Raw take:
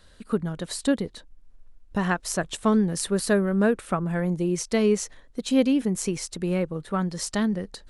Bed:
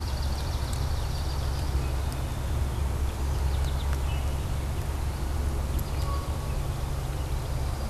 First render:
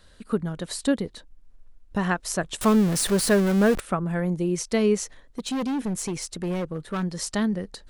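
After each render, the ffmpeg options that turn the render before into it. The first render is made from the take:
-filter_complex "[0:a]asettb=1/sr,asplit=3[a][b][c];[a]atrim=end=2.614[d];[b]atrim=start=2.61:end=3.8,asetpts=PTS-STARTPTS,afade=t=in:d=0.004:c=qsin,afade=t=out:st=1.186:d=0.004:c=qsin,aeval=exprs='val(0)+0.5*0.0562*sgn(val(0))':c=same[e];[c]atrim=start=3.796[f];[d][e]acrossfade=d=0.004:c1=hsin:c2=qsin[g];[g][f]acrossfade=d=0.004:c1=qsin:c2=hsin,asettb=1/sr,asplit=3[h][i][j];[h]atrim=end=5.034[k];[i]atrim=start=5.03:end=7.03,asetpts=PTS-STARTPTS,afade=t=in:d=0.004:c=qsin,afade=t=out:st=1.996:d=0.004:c=qsin,asoftclip=type=hard:threshold=-24dB[l];[j]atrim=start=7.026[m];[k][l]acrossfade=d=0.004:c1=hsin:c2=qsin[n];[n][m]acrossfade=d=0.004:c1=qsin:c2=hsin"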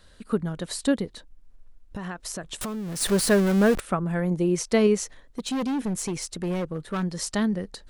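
-filter_complex "[0:a]asplit=3[a][b][c];[a]afade=t=out:st=1.04:d=0.02[d];[b]acompressor=threshold=-30dB:ratio=6:attack=3.2:release=140:knee=1:detection=peak,afade=t=in:st=1.04:d=0.02,afade=t=out:st=3:d=0.02[e];[c]afade=t=in:st=3:d=0.02[f];[d][e][f]amix=inputs=3:normalize=0,asettb=1/sr,asplit=3[g][h][i];[g]atrim=end=4.314[j];[h]atrim=start=4.31:end=4.87,asetpts=PTS-STARTPTS,afade=t=in:d=0.004:c=qsin,afade=t=out:st=0.556:d=0.004:c=qsin,equalizer=f=770:w=0.36:g=3.5[k];[i]atrim=start=4.866[l];[j][k]acrossfade=d=0.004:c1=hsin:c2=qsin[m];[m][l]acrossfade=d=0.004:c1=qsin:c2=hsin"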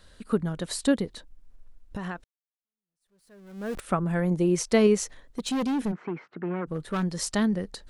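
-filter_complex "[0:a]asplit=3[a][b][c];[a]afade=t=out:st=5.91:d=0.02[d];[b]highpass=f=170:w=0.5412,highpass=f=170:w=1.3066,equalizer=f=210:t=q:w=4:g=-5,equalizer=f=530:t=q:w=4:g=-7,equalizer=f=1.4k:t=q:w=4:g=7,lowpass=f=2k:w=0.5412,lowpass=f=2k:w=1.3066,afade=t=in:st=5.91:d=0.02,afade=t=out:st=6.66:d=0.02[e];[c]afade=t=in:st=6.66:d=0.02[f];[d][e][f]amix=inputs=3:normalize=0,asplit=2[g][h];[g]atrim=end=2.24,asetpts=PTS-STARTPTS,afade=t=out:st=2.236:d=0.004:c=hsin[i];[h]atrim=start=2.24,asetpts=PTS-STARTPTS,afade=t=in:d=1.66:c=exp[j];[i][j]concat=n=2:v=0:a=1"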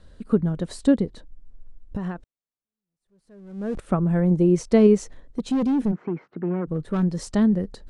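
-af "lowpass=f=10k:w=0.5412,lowpass=f=10k:w=1.3066,tiltshelf=f=810:g=7"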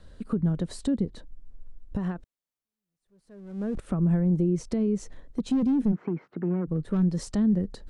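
-filter_complex "[0:a]alimiter=limit=-15dB:level=0:latency=1:release=75,acrossover=split=330[a][b];[b]acompressor=threshold=-37dB:ratio=5[c];[a][c]amix=inputs=2:normalize=0"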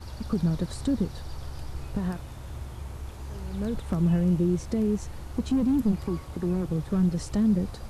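-filter_complex "[1:a]volume=-9.5dB[a];[0:a][a]amix=inputs=2:normalize=0"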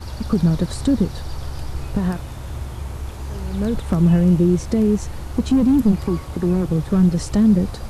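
-af "volume=8.5dB"

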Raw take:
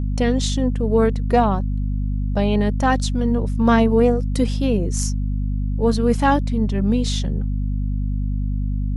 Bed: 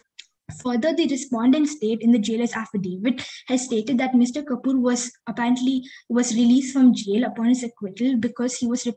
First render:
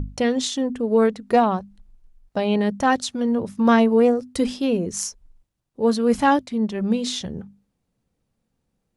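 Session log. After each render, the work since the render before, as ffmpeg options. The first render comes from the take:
-af "bandreject=f=50:t=h:w=6,bandreject=f=100:t=h:w=6,bandreject=f=150:t=h:w=6,bandreject=f=200:t=h:w=6,bandreject=f=250:t=h:w=6"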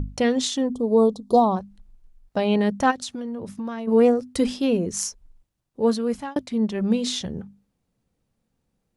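-filter_complex "[0:a]asplit=3[a][b][c];[a]afade=t=out:st=0.69:d=0.02[d];[b]asuperstop=centerf=2000:order=12:qfactor=0.89,afade=t=in:st=0.69:d=0.02,afade=t=out:st=1.55:d=0.02[e];[c]afade=t=in:st=1.55:d=0.02[f];[d][e][f]amix=inputs=3:normalize=0,asplit=3[g][h][i];[g]afade=t=out:st=2.9:d=0.02[j];[h]acompressor=threshold=-28dB:ratio=6:attack=3.2:release=140:knee=1:detection=peak,afade=t=in:st=2.9:d=0.02,afade=t=out:st=3.87:d=0.02[k];[i]afade=t=in:st=3.87:d=0.02[l];[j][k][l]amix=inputs=3:normalize=0,asplit=2[m][n];[m]atrim=end=6.36,asetpts=PTS-STARTPTS,afade=t=out:st=5.81:d=0.55[o];[n]atrim=start=6.36,asetpts=PTS-STARTPTS,afade=t=in:d=0.004:c=hsin[p];[o][p]concat=n=2:v=0:a=1"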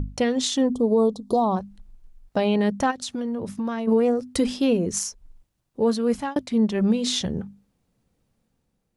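-af "dynaudnorm=f=120:g=9:m=4dB,alimiter=limit=-12dB:level=0:latency=1:release=277"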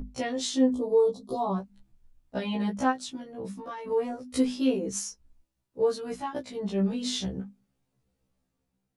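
-af "flanger=delay=7.1:depth=5.2:regen=-39:speed=0.65:shape=sinusoidal,afftfilt=real='re*1.73*eq(mod(b,3),0)':imag='im*1.73*eq(mod(b,3),0)':win_size=2048:overlap=0.75"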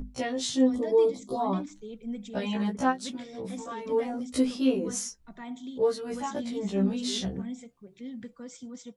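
-filter_complex "[1:a]volume=-19dB[a];[0:a][a]amix=inputs=2:normalize=0"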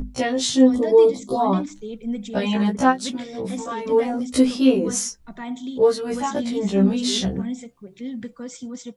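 -af "volume=8.5dB"

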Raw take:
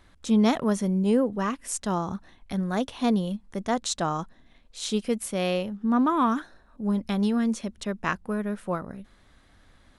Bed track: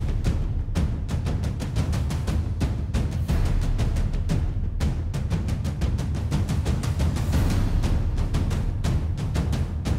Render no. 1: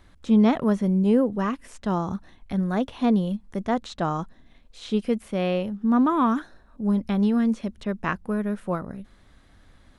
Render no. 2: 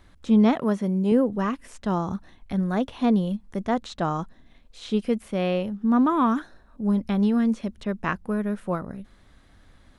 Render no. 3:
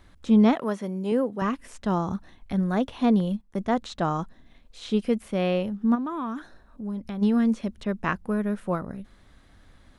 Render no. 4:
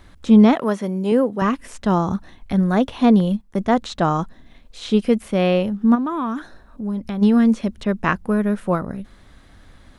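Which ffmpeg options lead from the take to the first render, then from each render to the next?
-filter_complex "[0:a]acrossover=split=3500[a][b];[b]acompressor=threshold=-52dB:ratio=4:attack=1:release=60[c];[a][c]amix=inputs=2:normalize=0,lowshelf=f=400:g=4"
-filter_complex "[0:a]asettb=1/sr,asplit=3[a][b][c];[a]atrim=end=0.554[d];[b]atrim=start=0.55:end=1.12,asetpts=PTS-STARTPTS,afade=t=in:d=0.004:c=qsin,afade=t=out:st=0.566:d=0.004:c=qsin,highpass=f=180:p=1[e];[c]atrim=start=1.116[f];[d][e]acrossfade=d=0.004:c1=hsin:c2=qsin[g];[g][f]acrossfade=d=0.004:c1=qsin:c2=hsin"
-filter_complex "[0:a]asettb=1/sr,asplit=3[a][b][c];[a]atrim=end=0.554[d];[b]atrim=start=0.55:end=1.42,asetpts=PTS-STARTPTS,afade=t=in:d=0.004:c=qsin,afade=t=out:st=0.866:d=0.004:c=qsin,highpass=f=400:p=1[e];[c]atrim=start=1.416[f];[d][e]acrossfade=d=0.004:c1=hsin:c2=qsin[g];[g][f]acrossfade=d=0.004:c1=qsin:c2=hsin,asettb=1/sr,asplit=3[h][i][j];[h]atrim=end=3.204[k];[i]atrim=start=3.2:end=3.68,asetpts=PTS-STARTPTS,afade=t=in:d=0.004:c=qsin,afade=t=out:st=0.476:d=0.004:c=qsin,agate=range=-12dB:threshold=-42dB:ratio=16:release=100:detection=peak[l];[j]atrim=start=3.676[m];[k][l]acrossfade=d=0.004:c1=hsin:c2=qsin[n];[n][m]acrossfade=d=0.004:c1=qsin:c2=hsin,asplit=3[o][p][q];[o]afade=t=out:st=5.94:d=0.02[r];[p]acompressor=threshold=-36dB:ratio=2:attack=3.2:release=140:knee=1:detection=peak,afade=t=in:st=5.94:d=0.02,afade=t=out:st=7.21:d=0.02[s];[q]afade=t=in:st=7.21:d=0.02[t];[r][s][t]amix=inputs=3:normalize=0"
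-af "volume=7dB,alimiter=limit=-3dB:level=0:latency=1"

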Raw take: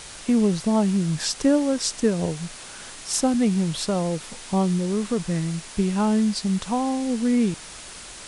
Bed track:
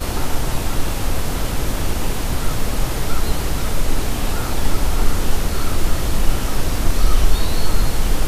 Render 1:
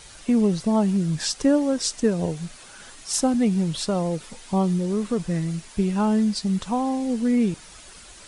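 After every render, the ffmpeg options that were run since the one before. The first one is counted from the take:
-af "afftdn=nr=8:nf=-40"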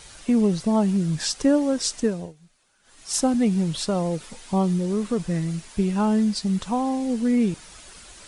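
-filter_complex "[0:a]asplit=3[a][b][c];[a]atrim=end=2.33,asetpts=PTS-STARTPTS,afade=t=out:st=1.99:d=0.34:silence=0.0891251[d];[b]atrim=start=2.33:end=2.83,asetpts=PTS-STARTPTS,volume=-21dB[e];[c]atrim=start=2.83,asetpts=PTS-STARTPTS,afade=t=in:d=0.34:silence=0.0891251[f];[d][e][f]concat=n=3:v=0:a=1"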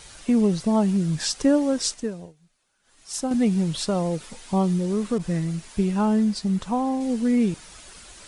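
-filter_complex "[0:a]asettb=1/sr,asplit=3[a][b][c];[a]atrim=end=5.184[d];[b]atrim=start=5.18:end=7.01,asetpts=PTS-STARTPTS,afade=t=in:d=0.004:c=qsin,afade=t=out:st=1.826:d=0.004:c=qsin,adynamicequalizer=threshold=0.00708:dfrequency=2000:dqfactor=0.7:tfrequency=2000:tqfactor=0.7:attack=5:release=100:ratio=0.375:range=2.5:mode=cutabove:tftype=highshelf[e];[c]atrim=start=7.006[f];[d][e]acrossfade=d=0.004:c1=hsin:c2=qsin[g];[g][f]acrossfade=d=0.004:c1=qsin:c2=hsin,asplit=3[h][i][j];[h]atrim=end=1.942[k];[i]atrim=start=1.938:end=3.312,asetpts=PTS-STARTPTS,volume=-6dB[l];[j]atrim=start=3.308[m];[k][l]acrossfade=d=0.004:c1=hsin:c2=hsin[n];[n][m]acrossfade=d=0.004:c1=hsin:c2=hsin"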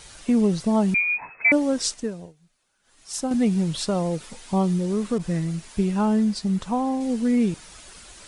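-filter_complex "[0:a]asettb=1/sr,asplit=3[a][b][c];[a]atrim=end=0.944[d];[b]atrim=start=0.94:end=1.52,asetpts=PTS-STARTPTS,afade=t=in:d=0.004:c=qsin,afade=t=out:st=0.576:d=0.004:c=qsin,lowpass=f=2.2k:t=q:w=0.5098,lowpass=f=2.2k:t=q:w=0.6013,lowpass=f=2.2k:t=q:w=0.9,lowpass=f=2.2k:t=q:w=2.563,afreqshift=-2600[e];[c]atrim=start=1.516[f];[d][e]acrossfade=d=0.004:c1=hsin:c2=qsin[g];[g][f]acrossfade=d=0.004:c1=qsin:c2=hsin"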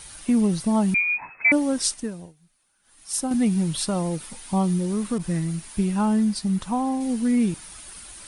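-af "superequalizer=7b=0.562:8b=0.708:16b=2.82"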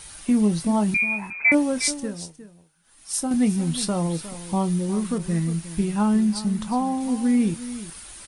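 -filter_complex "[0:a]asplit=2[a][b];[b]adelay=24,volume=-11dB[c];[a][c]amix=inputs=2:normalize=0,aecho=1:1:359:0.2"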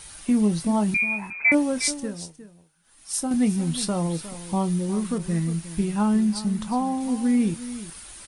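-af "volume=-1dB"

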